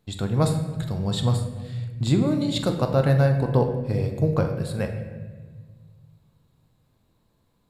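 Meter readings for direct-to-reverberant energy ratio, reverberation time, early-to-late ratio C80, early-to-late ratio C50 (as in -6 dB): 4.0 dB, 1.5 s, 8.5 dB, 7.0 dB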